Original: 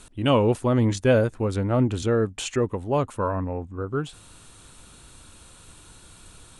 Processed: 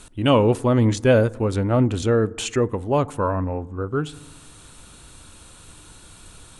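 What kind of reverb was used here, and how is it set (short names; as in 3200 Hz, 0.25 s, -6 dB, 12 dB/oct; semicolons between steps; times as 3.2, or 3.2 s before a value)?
FDN reverb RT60 1.1 s, low-frequency decay 1.4×, high-frequency decay 0.3×, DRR 20 dB; gain +3 dB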